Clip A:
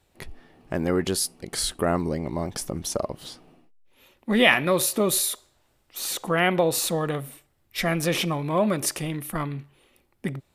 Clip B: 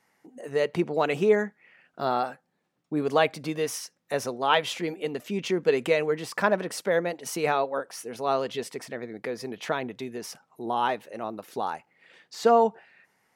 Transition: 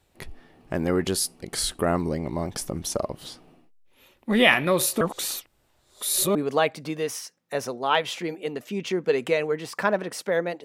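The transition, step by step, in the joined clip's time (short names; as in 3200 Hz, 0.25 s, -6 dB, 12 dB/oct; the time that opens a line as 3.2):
clip A
5.01–6.35 reverse
6.35 switch to clip B from 2.94 s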